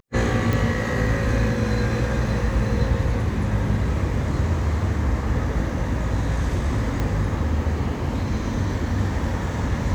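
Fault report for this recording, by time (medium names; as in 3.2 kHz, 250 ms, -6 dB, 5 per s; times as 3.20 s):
0.53 s: pop
7.00 s: pop -13 dBFS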